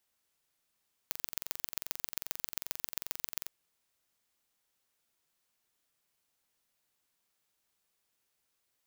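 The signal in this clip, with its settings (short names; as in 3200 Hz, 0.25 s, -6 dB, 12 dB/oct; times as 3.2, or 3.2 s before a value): pulse train 22.5/s, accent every 3, -5.5 dBFS 2.40 s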